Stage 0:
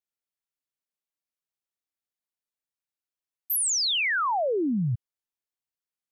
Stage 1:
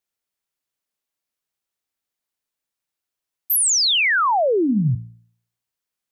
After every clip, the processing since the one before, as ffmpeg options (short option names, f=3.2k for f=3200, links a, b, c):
-af "bandreject=f=57.76:t=h:w=4,bandreject=f=115.52:t=h:w=4,bandreject=f=173.28:t=h:w=4,bandreject=f=231.04:t=h:w=4,bandreject=f=288.8:t=h:w=4,volume=7.5dB"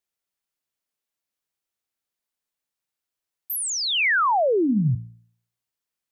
-filter_complex "[0:a]acrossover=split=2600[a][b];[b]acompressor=threshold=-25dB:ratio=4:attack=1:release=60[c];[a][c]amix=inputs=2:normalize=0,volume=-2dB"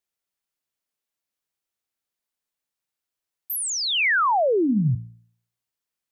-af anull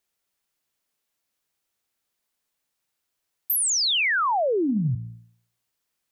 -af "acompressor=threshold=-28dB:ratio=12,volume=7dB"